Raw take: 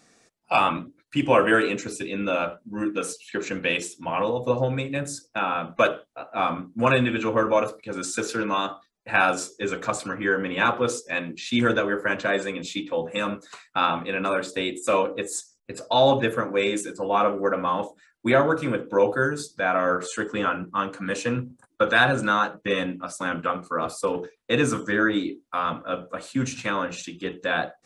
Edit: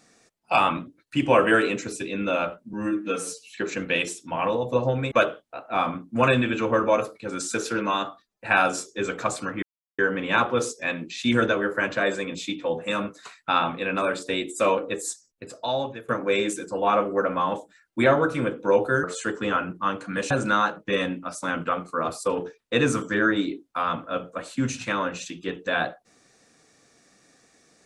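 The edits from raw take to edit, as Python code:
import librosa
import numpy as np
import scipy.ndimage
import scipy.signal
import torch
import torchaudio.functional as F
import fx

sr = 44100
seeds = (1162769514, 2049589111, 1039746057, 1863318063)

y = fx.edit(x, sr, fx.stretch_span(start_s=2.73, length_s=0.51, factor=1.5),
    fx.cut(start_s=4.86, length_s=0.89),
    fx.insert_silence(at_s=10.26, length_s=0.36),
    fx.fade_out_to(start_s=15.34, length_s=1.02, floor_db=-22.5),
    fx.cut(start_s=19.31, length_s=0.65),
    fx.cut(start_s=21.23, length_s=0.85), tone=tone)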